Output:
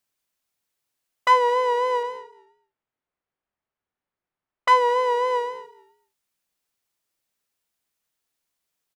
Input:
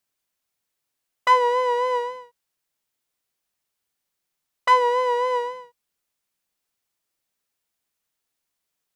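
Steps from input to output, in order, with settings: 2.03–4.72 s: level-controlled noise filter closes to 1.7 kHz, open at -28 dBFS; frequency-shifting echo 212 ms, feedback 32%, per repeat -45 Hz, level -21.5 dB

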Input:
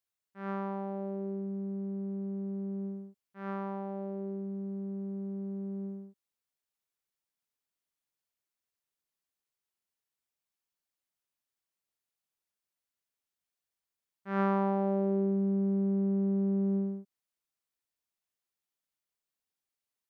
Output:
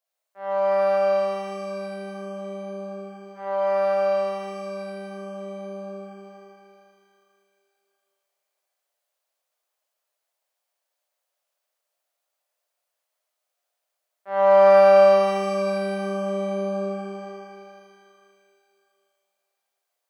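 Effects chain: resonant high-pass 610 Hz, resonance Q 4.9; pitch-shifted reverb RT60 2.6 s, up +12 st, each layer -8 dB, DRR -7 dB

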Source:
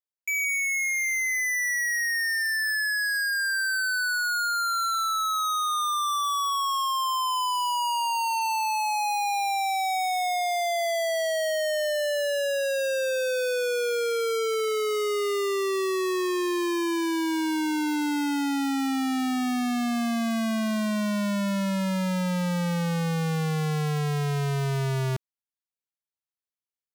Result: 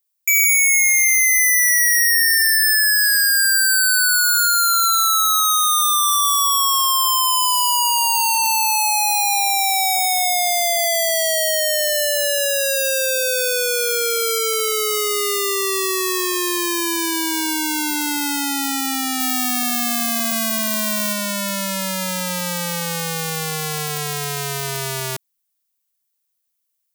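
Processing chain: 19.20–21.13 s: Schmitt trigger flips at -43 dBFS; RIAA curve recording; trim +5.5 dB

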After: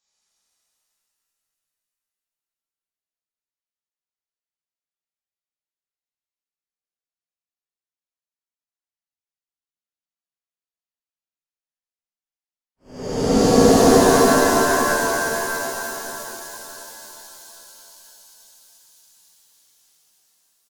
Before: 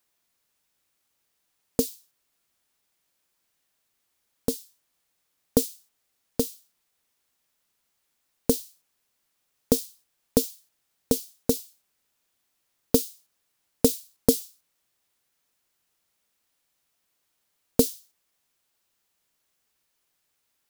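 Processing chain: resampled via 16 kHz; gate -53 dBFS, range -31 dB; Paulstretch 25×, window 0.05 s, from 5.86 s; delay 288 ms -6.5 dB; pitch-shifted reverb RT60 3.5 s, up +7 st, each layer -2 dB, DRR -10 dB; trim -4 dB

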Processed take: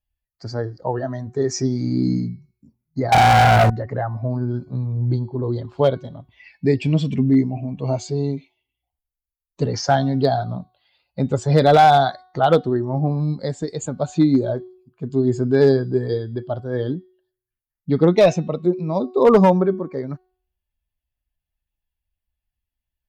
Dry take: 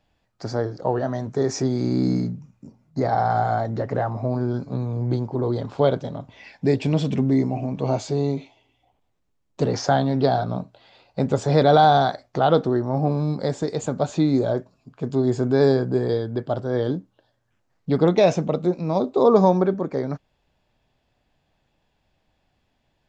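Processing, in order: expander on every frequency bin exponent 1.5; de-hum 368.9 Hz, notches 16; 3.12–3.70 s: waveshaping leveller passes 5; one-sided clip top -14 dBFS, bottom -10 dBFS; trim +5.5 dB

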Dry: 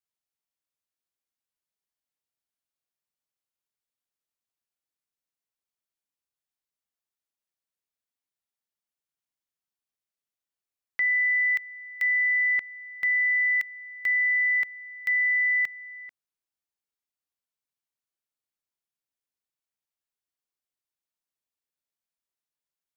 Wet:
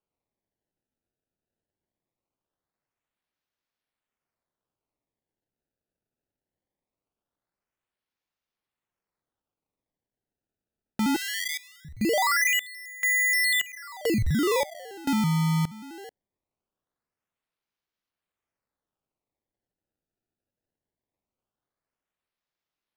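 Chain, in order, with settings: decimation with a swept rate 23×, swing 160% 0.21 Hz; 11.16–11.85 s: elliptic high-pass 1.7 kHz, stop band 80 dB

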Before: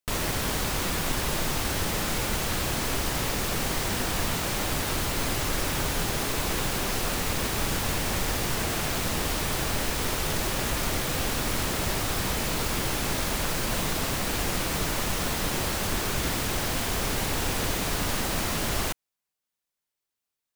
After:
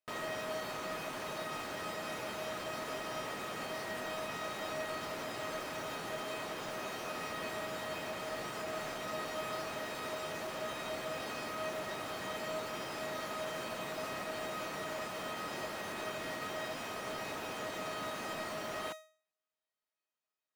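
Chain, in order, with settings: high-pass 170 Hz 12 dB/octave; peak limiter -25.5 dBFS, peak gain reduction 9 dB; overdrive pedal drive 8 dB, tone 1.1 kHz, clips at -25 dBFS; feedback comb 630 Hz, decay 0.42 s, mix 90%; trim +15.5 dB

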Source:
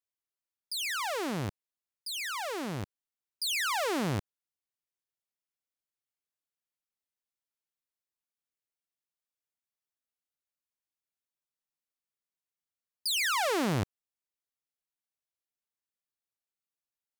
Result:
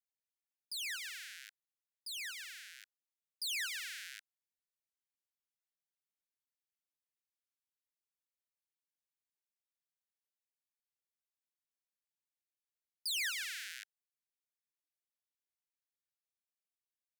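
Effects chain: steep high-pass 1.5 kHz 96 dB/octave; trim -6.5 dB

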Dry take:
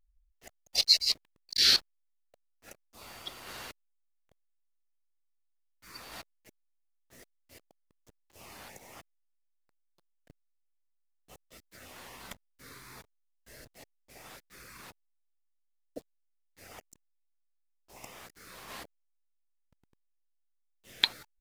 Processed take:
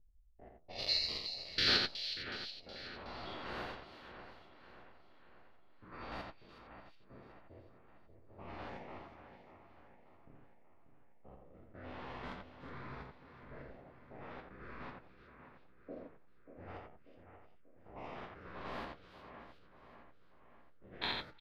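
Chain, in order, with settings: spectrogram pixelated in time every 100 ms; peaking EQ 2.3 kHz -4 dB 1.6 oct; flange 1.2 Hz, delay 9.3 ms, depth 6.3 ms, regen -41%; distance through air 360 m; delay 87 ms -4.5 dB; level-controlled noise filter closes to 510 Hz, open at -50 dBFS; on a send: two-band feedback delay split 2.6 kHz, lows 588 ms, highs 369 ms, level -10 dB; on the sum: trim +11 dB

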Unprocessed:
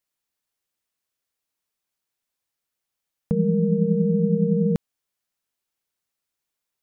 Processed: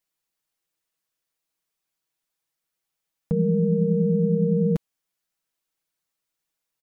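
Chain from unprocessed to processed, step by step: comb 6.2 ms, depth 59%; in parallel at +2 dB: peak limiter -16.5 dBFS, peak gain reduction 9 dB; on the sum: short-mantissa float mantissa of 8-bit; trim -8 dB

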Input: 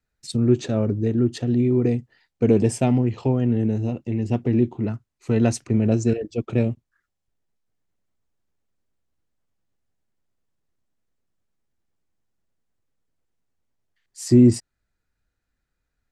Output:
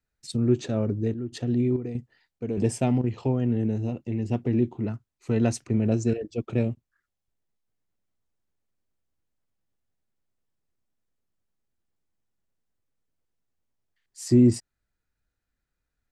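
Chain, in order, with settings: 0.70–3.04 s: square tremolo 1.6 Hz, depth 65%, duty 70%; trim -4 dB

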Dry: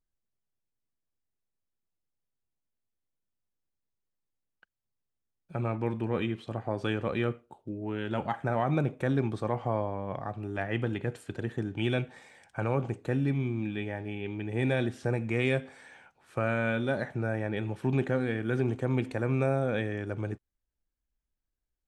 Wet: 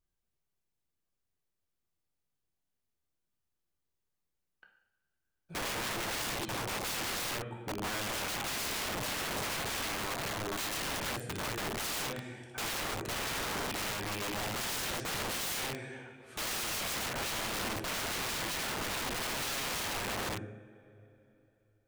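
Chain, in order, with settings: two-slope reverb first 0.73 s, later 3.2 s, from -20 dB, DRR 0.5 dB; integer overflow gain 31 dB

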